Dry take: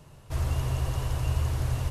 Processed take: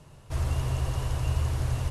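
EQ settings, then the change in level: steep low-pass 12 kHz 36 dB/octave; 0.0 dB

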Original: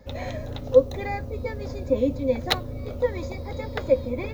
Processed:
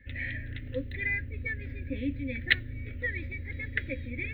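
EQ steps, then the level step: peaking EQ 5.4 kHz -15 dB 1.1 oct; dynamic bell 4 kHz, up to +6 dB, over -52 dBFS, Q 1.9; FFT filter 110 Hz 0 dB, 190 Hz -11 dB, 280 Hz -2 dB, 750 Hz -26 dB, 1.1 kHz -25 dB, 1.8 kHz +15 dB, 3.3 kHz +4 dB, 6.7 kHz -27 dB, 15 kHz -12 dB; -3.5 dB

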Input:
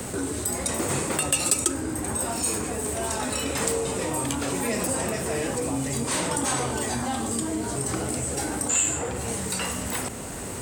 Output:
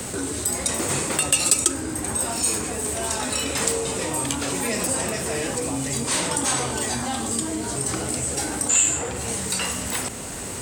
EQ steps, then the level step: peaking EQ 4.9 kHz +5.5 dB 2.6 oct; 0.0 dB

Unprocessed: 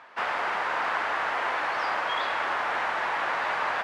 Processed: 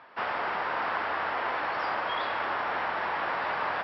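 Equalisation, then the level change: Chebyshev low-pass 5.5 kHz, order 8; bass shelf 460 Hz +8.5 dB; -3.5 dB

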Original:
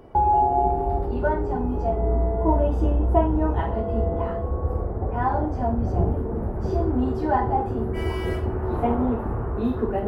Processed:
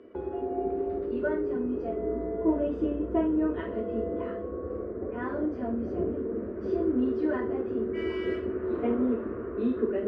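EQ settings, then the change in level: band-pass 170–2600 Hz; static phaser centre 340 Hz, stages 4; 0.0 dB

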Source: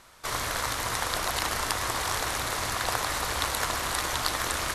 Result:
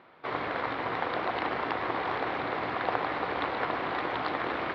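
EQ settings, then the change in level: distance through air 400 m; cabinet simulation 160–4500 Hz, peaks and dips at 160 Hz +4 dB, 280 Hz +6 dB, 490 Hz +4 dB, 760 Hz +5 dB, 2.2 kHz +3 dB; peaking EQ 370 Hz +5 dB 0.41 oct; 0.0 dB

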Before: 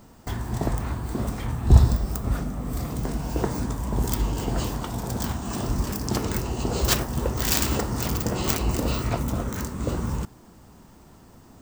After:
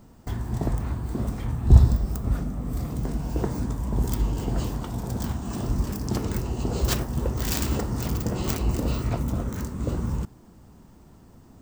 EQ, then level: bass shelf 440 Hz +7 dB; -6.0 dB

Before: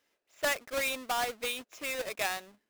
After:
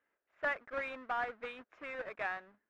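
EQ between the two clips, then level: resonant low-pass 1.6 kHz, resonance Q 2.1; -7.0 dB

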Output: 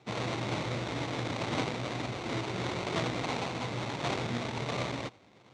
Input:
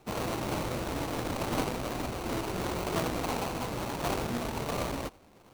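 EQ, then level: cabinet simulation 110–7100 Hz, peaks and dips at 120 Hz +9 dB, 2.1 kHz +7 dB, 3.6 kHz +7 dB; -2.0 dB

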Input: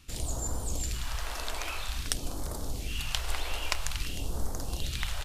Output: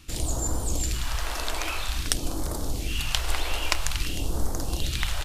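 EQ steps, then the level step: peaking EQ 320 Hz +6.5 dB 0.2 oct; +5.5 dB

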